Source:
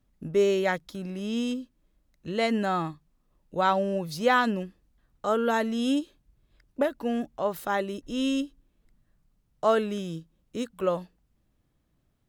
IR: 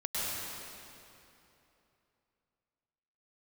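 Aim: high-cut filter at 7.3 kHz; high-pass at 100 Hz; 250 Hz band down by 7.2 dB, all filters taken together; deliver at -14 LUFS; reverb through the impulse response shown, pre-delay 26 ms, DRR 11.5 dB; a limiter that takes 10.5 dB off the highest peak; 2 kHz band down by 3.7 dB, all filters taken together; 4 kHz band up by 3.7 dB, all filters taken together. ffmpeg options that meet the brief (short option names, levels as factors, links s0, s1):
-filter_complex "[0:a]highpass=100,lowpass=7300,equalizer=f=250:t=o:g=-8.5,equalizer=f=2000:t=o:g=-6.5,equalizer=f=4000:t=o:g=7.5,alimiter=limit=0.075:level=0:latency=1,asplit=2[s0][s1];[1:a]atrim=start_sample=2205,adelay=26[s2];[s1][s2]afir=irnorm=-1:irlink=0,volume=0.119[s3];[s0][s3]amix=inputs=2:normalize=0,volume=10"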